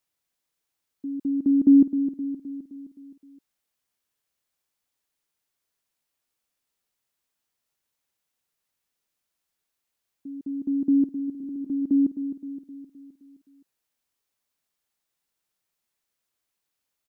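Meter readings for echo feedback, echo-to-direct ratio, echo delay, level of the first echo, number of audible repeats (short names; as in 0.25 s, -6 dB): 54%, -9.0 dB, 0.26 s, -10.5 dB, 5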